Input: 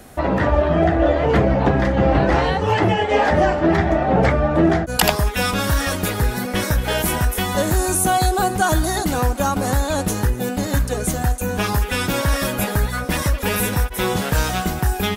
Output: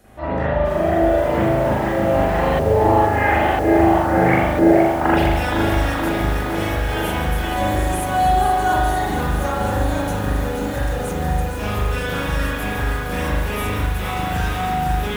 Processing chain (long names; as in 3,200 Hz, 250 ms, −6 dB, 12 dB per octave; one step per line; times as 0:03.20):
delay that swaps between a low-pass and a high-pass 129 ms, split 1,200 Hz, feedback 56%, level −12 dB
spring reverb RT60 1.2 s, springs 39 ms, chirp 80 ms, DRR −10 dB
0:02.59–0:05.17: auto-filter low-pass saw up 1 Hz 410–4,100 Hz
feedback echo at a low word length 469 ms, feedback 80%, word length 4 bits, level −8 dB
level −12.5 dB